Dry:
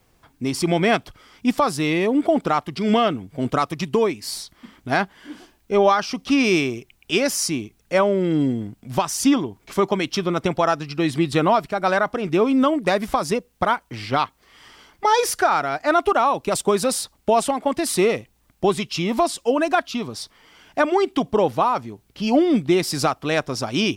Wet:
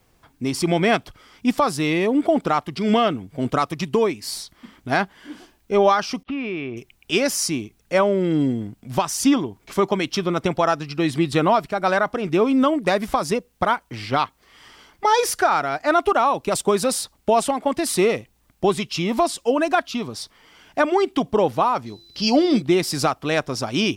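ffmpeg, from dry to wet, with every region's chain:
-filter_complex "[0:a]asettb=1/sr,asplit=3[a][b][c];[a]atrim=end=6.234[d];[b]atrim=start=6.23:end=6.77,asetpts=PTS-STARTPTS,afade=t=in:d=0.004:c=qsin,afade=t=out:st=0.536:d=0.004:c=qsin,agate=range=-24dB:threshold=-33dB:ratio=16:release=100:detection=peak,lowpass=f=2.9k:w=0.5412,lowpass=f=2.9k:w=1.3066,acompressor=threshold=-27dB:ratio=3:attack=3.2:release=140:knee=1:detection=peak[e];[c]atrim=start=6.766[f];[d][e]acrossfade=d=0.004:c1=hsin:c2=qsin[g];[g][f]acrossfade=d=0.004:c1=qsin:c2=hsin,asettb=1/sr,asplit=3[h][i][j];[h]atrim=end=21.864[k];[i]atrim=start=21.86:end=22.62,asetpts=PTS-STARTPTS,afade=t=in:d=0.004:c=qsin,afade=t=out:st=0.756:d=0.004:c=qsin,equalizer=f=4.9k:w=1.8:g=15,bandreject=f=169.9:t=h:w=4,bandreject=f=339.8:t=h:w=4,bandreject=f=509.7:t=h:w=4,bandreject=f=679.6:t=h:w=4,aeval=exprs='val(0)+0.00398*sin(2*PI*4000*n/s)':c=same[l];[j]atrim=start=22.616[m];[k][l]acrossfade=d=0.004:c1=hsin:c2=qsin[n];[n][m]acrossfade=d=0.004:c1=qsin:c2=hsin"

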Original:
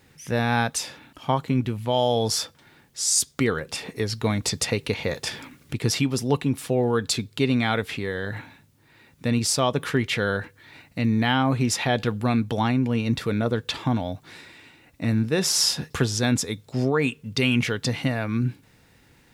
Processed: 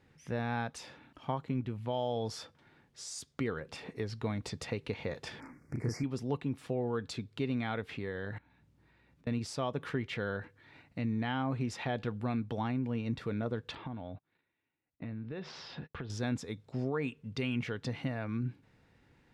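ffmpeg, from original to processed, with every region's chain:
-filter_complex "[0:a]asettb=1/sr,asplit=3[a][b][c];[a]atrim=end=5.404[d];[b]atrim=start=5.4:end=6.04,asetpts=PTS-STARTPTS,afade=t=in:d=0.004:c=qsin,afade=t=out:st=0.636:d=0.004:c=qsin,asuperstop=centerf=3300:order=8:qfactor=1.2,asplit=2[e][f];[f]adelay=33,volume=-2.5dB[g];[e][g]amix=inputs=2:normalize=0,atrim=end_sample=28224[h];[c]atrim=start=6.036[i];[d][h]acrossfade=d=0.004:c1=hsin:c2=qsin[j];[j][i]acrossfade=d=0.004:c1=qsin:c2=hsin,asettb=1/sr,asplit=3[k][l][m];[k]atrim=end=8.384[n];[l]atrim=start=8.38:end=9.27,asetpts=PTS-STARTPTS,afade=t=in:d=0.004:c=qsin,afade=t=out:st=0.886:d=0.004:c=qsin,acompressor=threshold=-54dB:ratio=16:attack=3.2:release=140:knee=1:detection=peak,aeval=exprs='val(0)+0.000794*(sin(2*PI*60*n/s)+sin(2*PI*2*60*n/s)/2+sin(2*PI*3*60*n/s)/3+sin(2*PI*4*60*n/s)/4+sin(2*PI*5*60*n/s)/5)':c=same,asplit=2[o][p];[p]adelay=27,volume=-10.5dB[q];[o][q]amix=inputs=2:normalize=0,atrim=end_sample=39249[r];[m]atrim=start=9.266[s];[n][r]acrossfade=d=0.004:c1=hsin:c2=qsin[t];[t][s]acrossfade=d=0.004:c1=qsin:c2=hsin,asettb=1/sr,asplit=3[u][v][w];[u]atrim=end=13.754[x];[v]atrim=start=13.75:end=16.1,asetpts=PTS-STARTPTS,afade=t=in:d=0.004:c=qsin,afade=t=out:st=2.346:d=0.004:c=qsin,lowpass=f=3.9k:w=0.5412,lowpass=f=3.9k:w=1.3066,acompressor=threshold=-29dB:ratio=6:attack=3.2:release=140:knee=1:detection=peak,agate=range=-26dB:threshold=-42dB:ratio=16:release=100:detection=peak[y];[w]atrim=start=16.096[z];[x][y]acrossfade=d=0.004:c1=hsin:c2=qsin[aa];[aa][z]acrossfade=d=0.004:c1=qsin:c2=hsin,acompressor=threshold=-28dB:ratio=1.5,aemphasis=mode=reproduction:type=75fm,volume=-8.5dB"

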